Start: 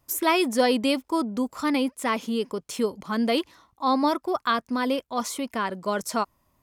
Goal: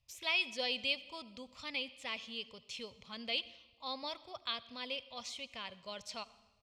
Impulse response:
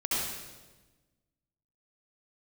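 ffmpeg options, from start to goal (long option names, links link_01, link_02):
-filter_complex "[0:a]firequalizer=gain_entry='entry(110,0);entry(180,-14);entry(340,-24);entry(520,-10);entry(880,-13);entry(1500,-15);entry(2500,5);entry(3900,3);entry(11000,-23)':delay=0.05:min_phase=1,asplit=2[link_01][link_02];[1:a]atrim=start_sample=2205[link_03];[link_02][link_03]afir=irnorm=-1:irlink=0,volume=-25dB[link_04];[link_01][link_04]amix=inputs=2:normalize=0,volume=-8dB"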